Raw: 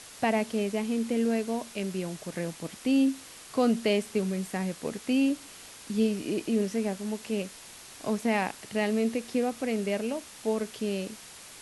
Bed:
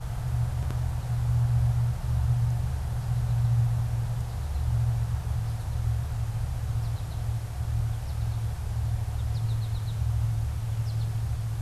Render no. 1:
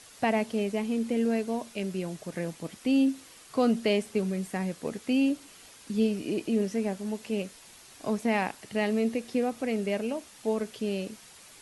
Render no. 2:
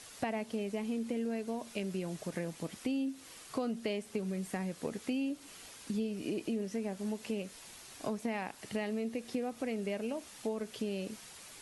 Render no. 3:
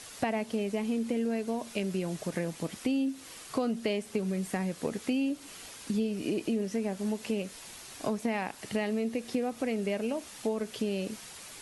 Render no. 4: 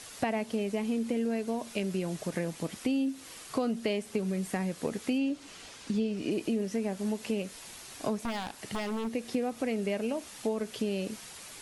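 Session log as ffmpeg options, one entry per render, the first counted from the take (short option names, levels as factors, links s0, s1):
-af "afftdn=nr=6:nf=-48"
-af "acompressor=threshold=0.0224:ratio=5"
-af "volume=1.78"
-filter_complex "[0:a]asettb=1/sr,asplit=3[s0][s1][s2];[s0]atrim=end=5.184[s3];[s1]atrim=start=5.18:end=6.31,asetpts=PTS-STARTPTS,afade=t=in:d=0.004:c=qsin,afade=t=out:st=1.126:d=0.004:c=qsin,lowpass=7200[s4];[s2]atrim=start=6.306[s5];[s3][s4]acrossfade=d=0.004:c1=hsin:c2=qsin[s6];[s6][s5]acrossfade=d=0.004:c1=qsin:c2=hsin,asettb=1/sr,asplit=3[s7][s8][s9];[s7]atrim=end=8.194[s10];[s8]atrim=start=8.19:end=9.1,asetpts=PTS-STARTPTS,afade=t=in:d=0.004:c=qsin,afade=t=out:st=0.906:d=0.004:c=qsin,aeval=exprs='0.0422*(abs(mod(val(0)/0.0422+3,4)-2)-1)':c=same[s11];[s9]atrim=start=9.096[s12];[s10][s11]acrossfade=d=0.004:c1=hsin:c2=qsin[s13];[s13][s12]acrossfade=d=0.004:c1=qsin:c2=hsin"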